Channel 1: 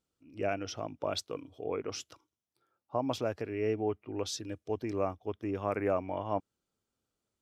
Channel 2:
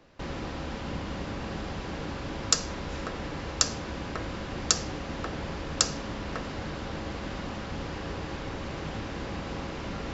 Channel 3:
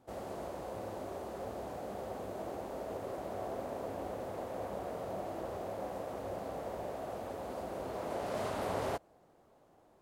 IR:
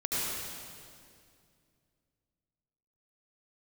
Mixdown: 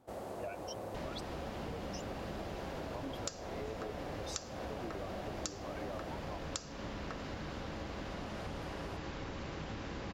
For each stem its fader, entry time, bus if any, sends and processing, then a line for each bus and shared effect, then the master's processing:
+1.5 dB, 0.00 s, no send, per-bin expansion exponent 3; limiter -33 dBFS, peak gain reduction 9 dB
-5.0 dB, 0.75 s, no send, dry
6.04 s -0.5 dB -> 6.78 s -11.5 dB, 0.00 s, no send, dry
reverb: off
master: compressor 6:1, threshold -38 dBFS, peak gain reduction 16 dB

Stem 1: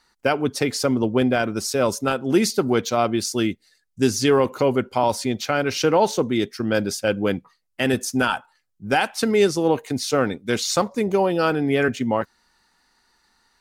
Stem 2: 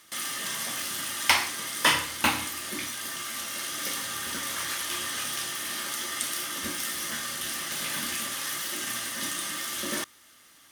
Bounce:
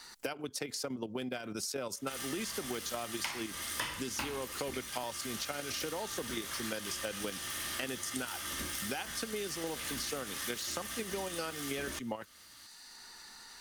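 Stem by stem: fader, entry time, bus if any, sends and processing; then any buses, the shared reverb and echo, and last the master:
-7.5 dB, 0.00 s, no send, level quantiser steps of 10 dB; high shelf 2900 Hz +9 dB; three-band squash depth 70%
-2.5 dB, 1.95 s, no send, octaver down 2 oct, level +4 dB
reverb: off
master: low shelf 110 Hz -5.5 dB; compressor, threshold -35 dBFS, peak gain reduction 16 dB

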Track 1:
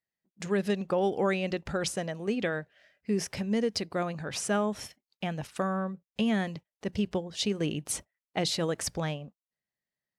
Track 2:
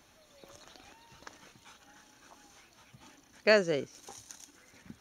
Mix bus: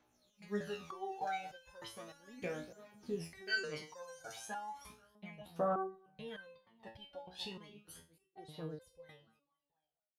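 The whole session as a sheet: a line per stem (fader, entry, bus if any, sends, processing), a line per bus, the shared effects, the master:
7.47 s -7.5 dB -> 8.25 s -14.5 dB, 0.00 s, no send, echo send -21 dB, EQ curve 210 Hz 0 dB, 900 Hz +9 dB, 2200 Hz 0 dB, 3800 Hz +3 dB, 7300 Hz -13 dB, 11000 Hz +2 dB
-10.0 dB, 0.00 s, no send, no echo send, low shelf 200 Hz -11.5 dB; AGC gain up to 13 dB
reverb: off
echo: feedback echo 0.242 s, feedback 34%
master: phaser 0.35 Hz, delay 1.4 ms, feedback 77%; stepped resonator 3.3 Hz 61–520 Hz

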